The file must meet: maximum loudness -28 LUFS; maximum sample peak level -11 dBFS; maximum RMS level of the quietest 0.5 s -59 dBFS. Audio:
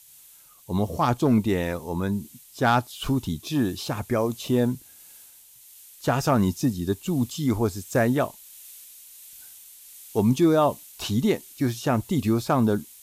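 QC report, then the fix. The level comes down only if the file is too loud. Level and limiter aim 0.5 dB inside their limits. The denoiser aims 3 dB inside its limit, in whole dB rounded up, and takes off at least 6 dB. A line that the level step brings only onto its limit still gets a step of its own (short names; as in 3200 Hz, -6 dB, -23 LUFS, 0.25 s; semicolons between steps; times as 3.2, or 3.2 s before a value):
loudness -24.5 LUFS: fail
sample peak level -10.5 dBFS: fail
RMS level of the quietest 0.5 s -52 dBFS: fail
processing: denoiser 6 dB, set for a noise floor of -52 dBFS; gain -4 dB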